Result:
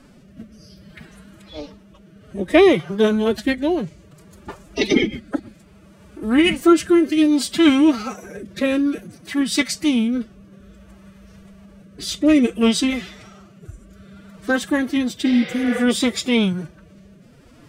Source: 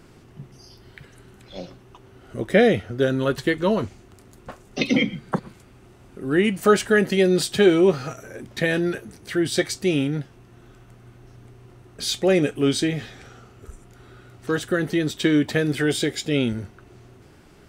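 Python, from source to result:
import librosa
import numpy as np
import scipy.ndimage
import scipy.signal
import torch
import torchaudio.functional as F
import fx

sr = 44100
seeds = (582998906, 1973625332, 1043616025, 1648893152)

y = fx.pitch_keep_formants(x, sr, semitones=8.5)
y = fx.rotary(y, sr, hz=0.6)
y = fx.spec_repair(y, sr, seeds[0], start_s=15.28, length_s=0.49, low_hz=350.0, high_hz=5800.0, source='both')
y = y * librosa.db_to_amplitude(5.0)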